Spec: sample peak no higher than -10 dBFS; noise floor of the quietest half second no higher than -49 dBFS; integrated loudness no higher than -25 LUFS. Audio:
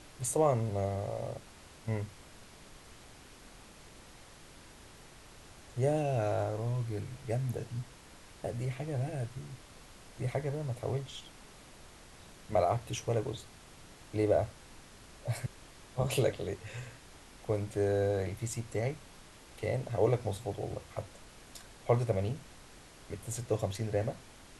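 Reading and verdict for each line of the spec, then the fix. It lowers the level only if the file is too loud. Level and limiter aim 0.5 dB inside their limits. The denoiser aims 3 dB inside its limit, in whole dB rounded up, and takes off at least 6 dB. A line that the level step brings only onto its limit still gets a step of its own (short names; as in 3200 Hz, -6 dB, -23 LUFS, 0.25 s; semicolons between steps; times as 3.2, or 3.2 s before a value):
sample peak -14.5 dBFS: OK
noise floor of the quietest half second -54 dBFS: OK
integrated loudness -34.5 LUFS: OK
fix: none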